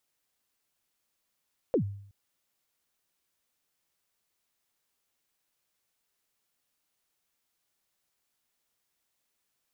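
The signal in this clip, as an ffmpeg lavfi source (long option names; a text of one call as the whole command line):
ffmpeg -f lavfi -i "aevalsrc='0.106*pow(10,-3*t/0.64)*sin(2*PI*(570*0.094/log(100/570)*(exp(log(100/570)*min(t,0.094)/0.094)-1)+100*max(t-0.094,0)))':duration=0.37:sample_rate=44100" out.wav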